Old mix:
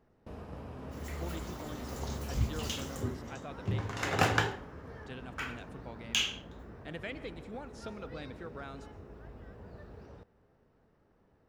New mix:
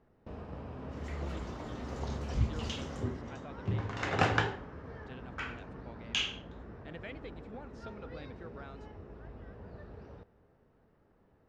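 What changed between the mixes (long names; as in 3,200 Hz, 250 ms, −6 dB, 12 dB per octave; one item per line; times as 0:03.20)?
speech: send off
first sound: send +8.0 dB
master: add high-frequency loss of the air 110 metres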